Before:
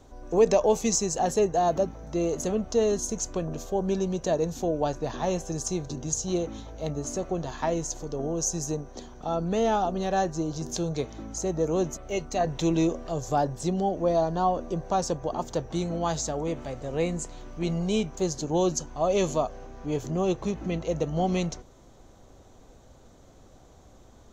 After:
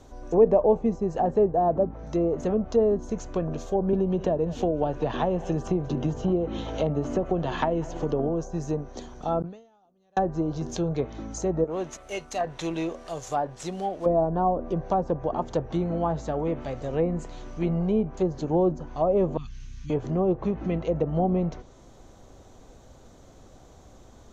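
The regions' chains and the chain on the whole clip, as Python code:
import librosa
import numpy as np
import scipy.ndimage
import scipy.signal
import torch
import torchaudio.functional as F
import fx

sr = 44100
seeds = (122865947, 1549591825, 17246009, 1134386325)

y = fx.chain(x, sr, fx.peak_eq(hz=3000.0, db=7.5, octaves=0.35),
    fx.echo_single(ms=189, db=-21.0),
    fx.band_squash(depth_pct=100), at=(3.93, 8.29))
y = fx.chain(y, sr, fx.highpass(hz=76.0, slope=12),
    fx.gate_flip(shuts_db=-23.0, range_db=-40),
    fx.sustainer(db_per_s=110.0), at=(9.4, 10.17))
y = fx.chain(y, sr, fx.cvsd(bps=64000),
    fx.low_shelf(hz=490.0, db=-12.0), at=(11.64, 14.06))
y = fx.chain(y, sr, fx.cheby1_bandstop(low_hz=120.0, high_hz=2900.0, order=2),
    fx.env_flatten(amount_pct=50), at=(19.37, 19.9))
y = fx.env_lowpass_down(y, sr, base_hz=850.0, full_db=-22.0)
y = fx.dynamic_eq(y, sr, hz=4900.0, q=1.7, threshold_db=-55.0, ratio=4.0, max_db=-4)
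y = y * 10.0 ** (2.5 / 20.0)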